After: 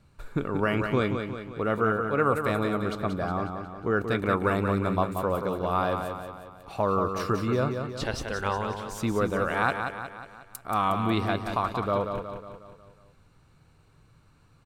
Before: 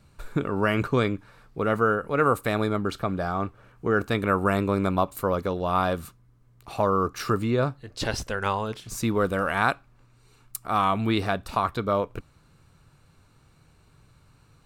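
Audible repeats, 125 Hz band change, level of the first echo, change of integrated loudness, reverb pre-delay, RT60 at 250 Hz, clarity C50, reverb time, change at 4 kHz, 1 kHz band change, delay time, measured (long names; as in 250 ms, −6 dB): 6, −1.5 dB, −6.5 dB, −2.0 dB, no reverb audible, no reverb audible, no reverb audible, no reverb audible, −3.5 dB, −1.5 dB, 181 ms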